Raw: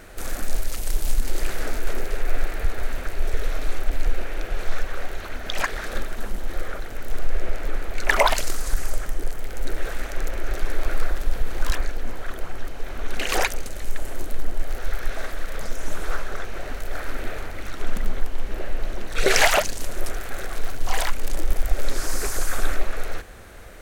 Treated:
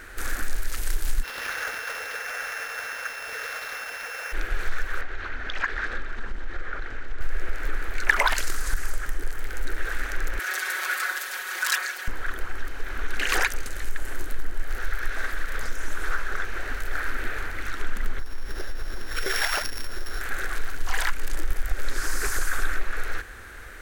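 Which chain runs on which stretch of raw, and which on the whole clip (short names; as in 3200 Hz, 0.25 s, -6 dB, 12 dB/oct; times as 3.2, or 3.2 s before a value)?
1.22–4.32 steep high-pass 450 Hz 96 dB/oct + whine 2700 Hz -40 dBFS + sample-rate reducer 8000 Hz
5.01–7.21 compressor 2:1, threshold -26 dBFS + air absorption 130 m
10.39–12.08 HPF 740 Hz + high shelf 3400 Hz +8 dB + comb 5.4 ms, depth 91%
18.19–20.21 sample sorter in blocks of 8 samples + compressor 3:1, threshold -23 dBFS
whole clip: fifteen-band EQ 160 Hz -12 dB, 630 Hz -8 dB, 1600 Hz +9 dB; compressor 2:1, threshold -19 dBFS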